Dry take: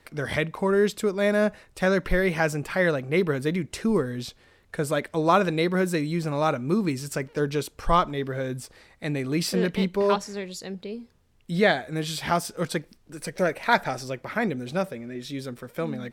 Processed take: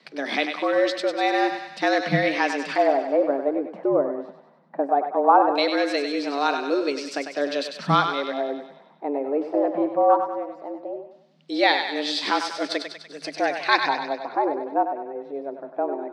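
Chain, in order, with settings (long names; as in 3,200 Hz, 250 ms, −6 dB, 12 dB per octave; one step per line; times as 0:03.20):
auto-filter low-pass square 0.18 Hz 740–4,300 Hz
frequency shifter +140 Hz
feedback echo with a high-pass in the loop 98 ms, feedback 60%, high-pass 680 Hz, level −6 dB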